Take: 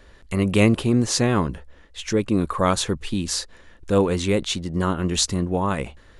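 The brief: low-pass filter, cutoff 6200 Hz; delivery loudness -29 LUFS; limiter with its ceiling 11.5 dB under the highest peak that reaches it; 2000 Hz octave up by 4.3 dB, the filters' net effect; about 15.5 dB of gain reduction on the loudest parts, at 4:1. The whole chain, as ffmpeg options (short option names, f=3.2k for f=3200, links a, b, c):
-af "lowpass=6.2k,equalizer=f=2k:t=o:g=5.5,acompressor=threshold=-31dB:ratio=4,volume=10.5dB,alimiter=limit=-19dB:level=0:latency=1"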